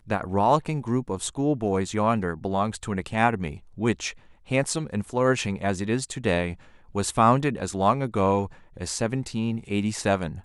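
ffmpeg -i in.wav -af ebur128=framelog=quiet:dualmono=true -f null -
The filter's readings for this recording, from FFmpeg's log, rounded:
Integrated loudness:
  I:         -22.5 LUFS
  Threshold: -32.7 LUFS
Loudness range:
  LRA:         2.1 LU
  Threshold: -42.7 LUFS
  LRA low:   -23.7 LUFS
  LRA high:  -21.6 LUFS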